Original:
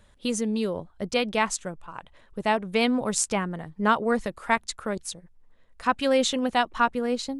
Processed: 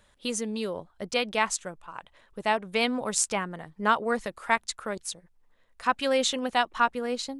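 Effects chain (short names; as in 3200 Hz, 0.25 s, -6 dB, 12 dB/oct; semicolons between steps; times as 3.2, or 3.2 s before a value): low shelf 370 Hz -8.5 dB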